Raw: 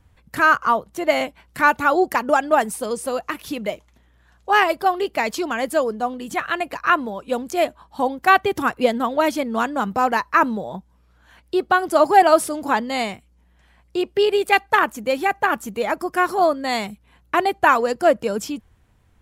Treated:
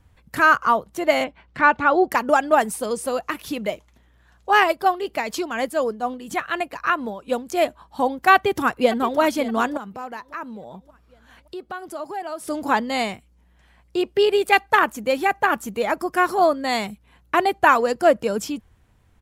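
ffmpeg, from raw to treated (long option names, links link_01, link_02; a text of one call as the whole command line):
ffmpeg -i in.wav -filter_complex "[0:a]asettb=1/sr,asplit=3[link_01][link_02][link_03];[link_01]atrim=end=1.244[link_04];[link_02]atrim=start=1.24:end=2.12,asetpts=PTS-STARTPTS,afade=type=in:duration=0.004:curve=qsin,afade=type=out:start_time=0.876:duration=0.004:curve=qsin,lowpass=3400[link_05];[link_03]atrim=start=2.116[link_06];[link_04][link_05]acrossfade=duration=0.004:curve1=hsin:curve2=qsin[link_07];[link_07][link_06]acrossfade=duration=0.004:curve1=qsin:curve2=hsin,asplit=3[link_08][link_09][link_10];[link_08]afade=type=out:start_time=4.71:duration=0.02[link_11];[link_09]tremolo=f=4.1:d=0.49,afade=type=in:start_time=4.71:duration=0.02,afade=type=out:start_time=7.6:duration=0.02[link_12];[link_10]afade=type=in:start_time=7.6:duration=0.02[link_13];[link_11][link_12][link_13]amix=inputs=3:normalize=0,asplit=2[link_14][link_15];[link_15]afade=type=in:start_time=8.34:duration=0.01,afade=type=out:start_time=9.19:duration=0.01,aecho=0:1:570|1140|1710|2280:0.199526|0.0798105|0.0319242|0.0127697[link_16];[link_14][link_16]amix=inputs=2:normalize=0,asettb=1/sr,asplit=3[link_17][link_18][link_19];[link_17]atrim=end=9.774[link_20];[link_18]atrim=start=9.77:end=12.48,asetpts=PTS-STARTPTS,afade=type=in:duration=0.004:curve=qsin,afade=type=out:start_time=2.706:duration=0.004:curve=qsin,acompressor=threshold=-42dB:ratio=2:attack=3.2:release=140:knee=1:detection=peak[link_21];[link_19]atrim=start=12.476[link_22];[link_20][link_21]acrossfade=duration=0.004:curve1=hsin:curve2=qsin[link_23];[link_23][link_22]acrossfade=duration=0.004:curve1=qsin:curve2=hsin" out.wav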